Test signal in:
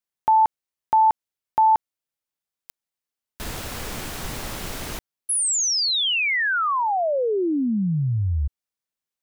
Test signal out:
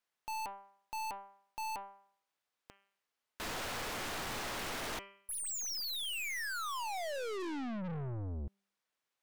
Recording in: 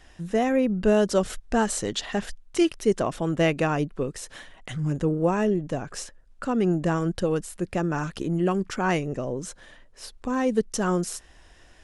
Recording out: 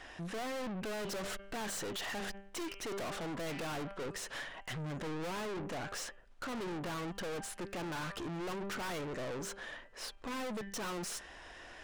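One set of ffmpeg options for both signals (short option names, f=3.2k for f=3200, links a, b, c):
-filter_complex "[0:a]bandreject=f=197.6:t=h:w=4,bandreject=f=395.2:t=h:w=4,bandreject=f=592.8:t=h:w=4,bandreject=f=790.4:t=h:w=4,bandreject=f=988:t=h:w=4,bandreject=f=1.1856k:t=h:w=4,bandreject=f=1.3832k:t=h:w=4,bandreject=f=1.5808k:t=h:w=4,bandreject=f=1.7784k:t=h:w=4,bandreject=f=1.976k:t=h:w=4,bandreject=f=2.1736k:t=h:w=4,bandreject=f=2.3712k:t=h:w=4,bandreject=f=2.5688k:t=h:w=4,bandreject=f=2.7664k:t=h:w=4,bandreject=f=2.964k:t=h:w=4,bandreject=f=3.1616k:t=h:w=4,asplit=2[a][b];[b]highpass=f=720:p=1,volume=16dB,asoftclip=type=tanh:threshold=-9dB[c];[a][c]amix=inputs=2:normalize=0,lowpass=f=2k:p=1,volume=-6dB,acontrast=75,aeval=exprs='(tanh(35.5*val(0)+0.3)-tanh(0.3))/35.5':c=same,volume=-7.5dB"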